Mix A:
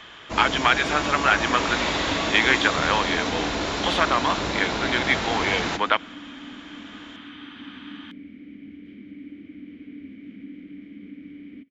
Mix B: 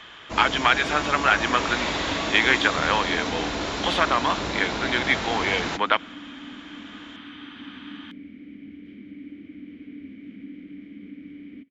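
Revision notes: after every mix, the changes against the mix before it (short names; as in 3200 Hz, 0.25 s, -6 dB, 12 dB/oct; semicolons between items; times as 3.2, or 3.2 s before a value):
first sound: send -8.5 dB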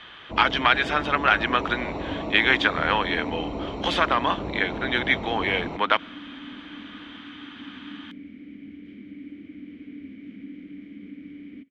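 first sound: add running mean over 27 samples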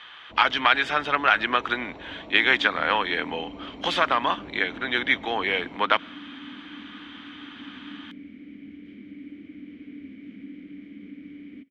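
first sound -11.5 dB; master: add low shelf 200 Hz -3 dB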